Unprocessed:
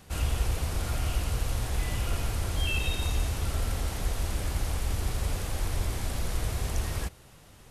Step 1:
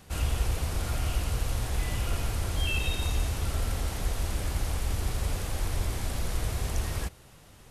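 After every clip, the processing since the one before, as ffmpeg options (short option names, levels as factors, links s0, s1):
-af anull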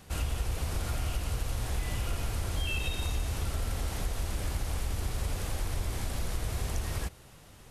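-af "acompressor=threshold=0.0398:ratio=3"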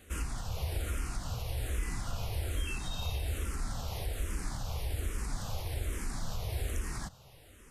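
-filter_complex "[0:a]asplit=2[s0][s1];[s1]afreqshift=-1.2[s2];[s0][s2]amix=inputs=2:normalize=1"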